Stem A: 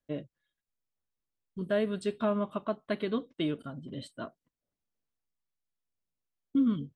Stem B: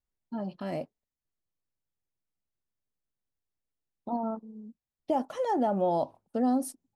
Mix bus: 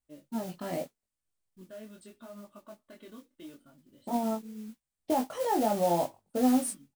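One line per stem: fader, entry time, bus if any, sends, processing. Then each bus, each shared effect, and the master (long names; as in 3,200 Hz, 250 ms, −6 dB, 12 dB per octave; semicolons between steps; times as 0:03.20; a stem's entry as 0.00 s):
−12.5 dB, 0.00 s, no send, comb filter 3.4 ms, depth 49%; brickwall limiter −23.5 dBFS, peak gain reduction 7.5 dB; automatic ducking −6 dB, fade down 0.50 s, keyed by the second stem
+3.0 dB, 0.00 s, no send, no processing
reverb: not used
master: parametric band 8,600 Hz +10 dB 0.38 octaves; noise that follows the level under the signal 16 dB; chorus effect 0.77 Hz, delay 19.5 ms, depth 3.9 ms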